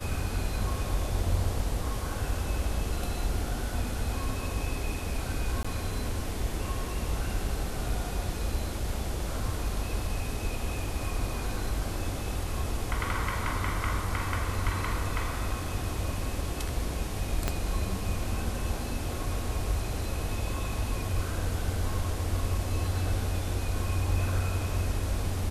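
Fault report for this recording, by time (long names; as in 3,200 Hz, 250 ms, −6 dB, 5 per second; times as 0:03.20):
0:05.63–0:05.64: drop-out 15 ms
0:17.48: click −12 dBFS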